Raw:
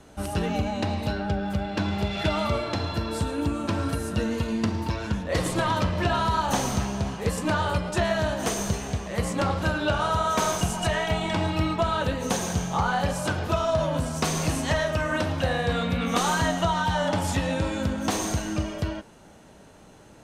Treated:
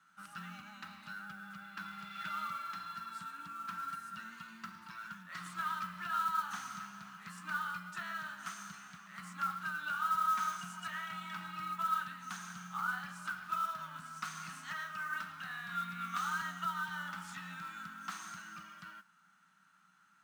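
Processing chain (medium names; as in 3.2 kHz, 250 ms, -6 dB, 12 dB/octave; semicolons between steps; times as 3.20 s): two resonant band-passes 490 Hz, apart 2.9 oct; differentiator; modulation noise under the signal 22 dB; trim +13 dB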